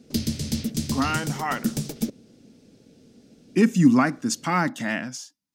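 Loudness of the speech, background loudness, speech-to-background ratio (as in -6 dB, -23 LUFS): -23.5 LUFS, -29.0 LUFS, 5.5 dB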